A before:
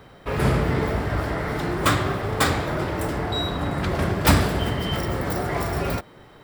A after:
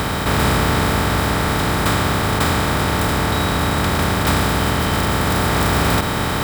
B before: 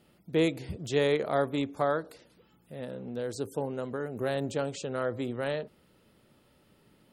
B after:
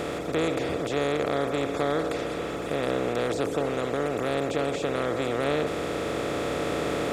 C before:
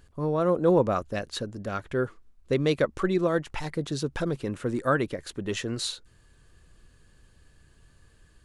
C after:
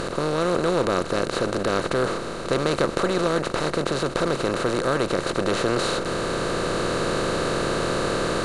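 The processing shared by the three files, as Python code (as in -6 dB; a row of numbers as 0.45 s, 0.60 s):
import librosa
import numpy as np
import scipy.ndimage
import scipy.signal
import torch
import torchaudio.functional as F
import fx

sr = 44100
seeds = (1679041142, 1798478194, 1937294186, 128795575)

y = fx.bin_compress(x, sr, power=0.2)
y = fx.rider(y, sr, range_db=10, speed_s=2.0)
y = y * 10.0 ** (-4.5 / 20.0)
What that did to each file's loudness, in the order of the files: +6.0 LU, +3.5 LU, +4.0 LU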